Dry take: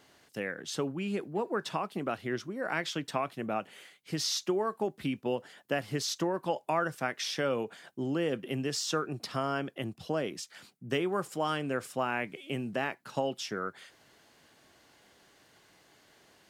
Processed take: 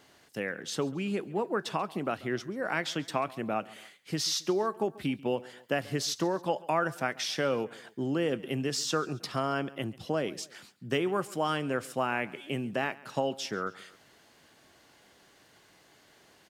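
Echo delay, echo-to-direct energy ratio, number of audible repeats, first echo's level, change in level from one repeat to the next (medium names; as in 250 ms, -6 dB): 137 ms, -20.0 dB, 2, -21.0 dB, -6.5 dB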